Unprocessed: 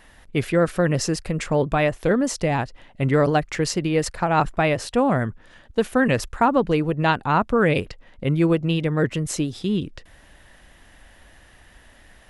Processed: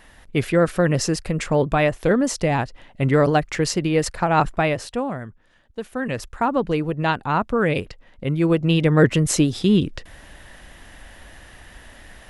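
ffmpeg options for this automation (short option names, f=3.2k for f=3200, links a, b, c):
-af "volume=18dB,afade=t=out:st=4.48:d=0.7:silence=0.266073,afade=t=in:st=5.85:d=0.8:silence=0.375837,afade=t=in:st=8.39:d=0.59:silence=0.398107"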